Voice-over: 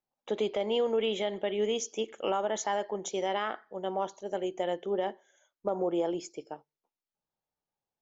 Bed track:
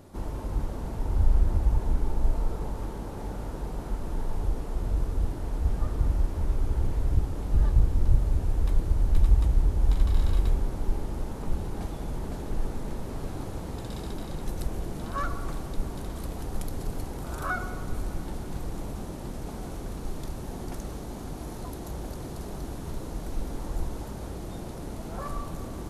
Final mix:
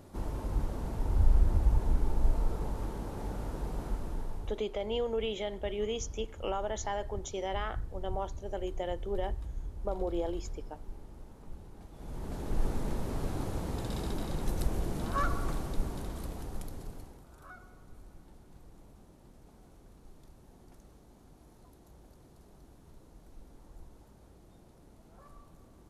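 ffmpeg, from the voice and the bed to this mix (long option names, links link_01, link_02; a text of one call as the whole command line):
ffmpeg -i stem1.wav -i stem2.wav -filter_complex "[0:a]adelay=4200,volume=-4.5dB[link_01];[1:a]volume=14.5dB,afade=type=out:start_time=3.84:duration=0.8:silence=0.188365,afade=type=in:start_time=11.91:duration=0.78:silence=0.141254,afade=type=out:start_time=15.37:duration=1.9:silence=0.0944061[link_02];[link_01][link_02]amix=inputs=2:normalize=0" out.wav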